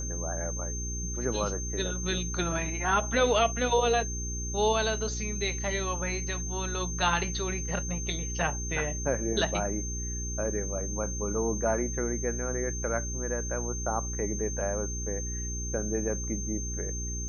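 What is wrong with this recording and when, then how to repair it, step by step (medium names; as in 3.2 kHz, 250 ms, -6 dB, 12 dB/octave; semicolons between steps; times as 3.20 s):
hum 60 Hz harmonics 7 -35 dBFS
whine 6.3 kHz -36 dBFS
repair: band-stop 6.3 kHz, Q 30; de-hum 60 Hz, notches 7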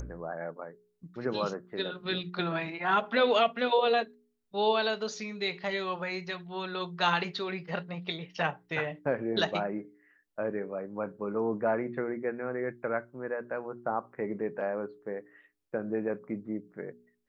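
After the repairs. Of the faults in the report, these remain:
nothing left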